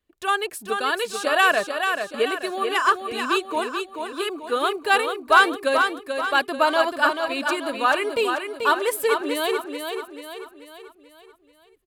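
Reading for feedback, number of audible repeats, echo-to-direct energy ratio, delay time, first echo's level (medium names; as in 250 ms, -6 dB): 47%, 5, -5.0 dB, 436 ms, -6.0 dB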